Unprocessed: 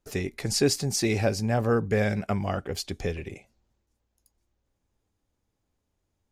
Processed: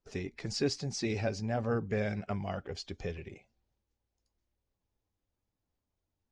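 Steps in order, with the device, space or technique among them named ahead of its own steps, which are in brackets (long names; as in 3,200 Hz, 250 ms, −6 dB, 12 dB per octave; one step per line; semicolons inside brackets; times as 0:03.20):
clip after many re-uploads (low-pass filter 6,300 Hz 24 dB per octave; spectral magnitudes quantised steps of 15 dB)
level −7.5 dB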